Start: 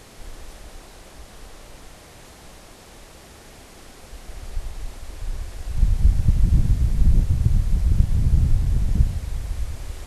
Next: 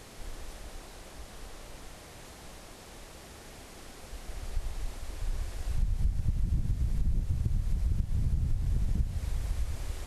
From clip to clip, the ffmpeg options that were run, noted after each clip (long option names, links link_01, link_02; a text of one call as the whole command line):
ffmpeg -i in.wav -af "acompressor=threshold=-21dB:ratio=5,volume=-3.5dB" out.wav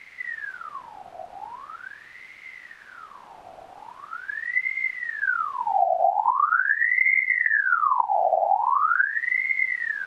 ffmpeg -i in.wav -af "bass=frequency=250:gain=9,treble=frequency=4000:gain=-13,aeval=exprs='val(0)*sin(2*PI*1400*n/s+1400*0.5/0.42*sin(2*PI*0.42*n/s))':channel_layout=same" out.wav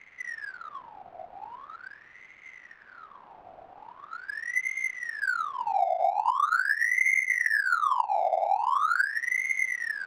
ffmpeg -i in.wav -filter_complex "[0:a]acrossover=split=450[link_01][link_02];[link_01]alimiter=level_in=11dB:limit=-24dB:level=0:latency=1:release=295,volume=-11dB[link_03];[link_03][link_02]amix=inputs=2:normalize=0,adynamicsmooth=sensitivity=6:basefreq=2100,volume=-4dB" out.wav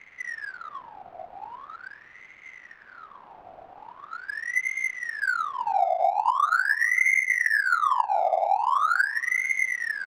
ffmpeg -i in.wav -filter_complex "[0:a]asplit=2[link_01][link_02];[link_02]adelay=443.1,volume=-29dB,highshelf=frequency=4000:gain=-9.97[link_03];[link_01][link_03]amix=inputs=2:normalize=0,volume=2.5dB" out.wav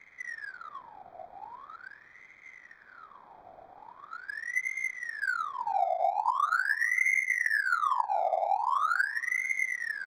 ffmpeg -i in.wav -af "asuperstop=centerf=2800:order=8:qfactor=4.8,volume=-5dB" out.wav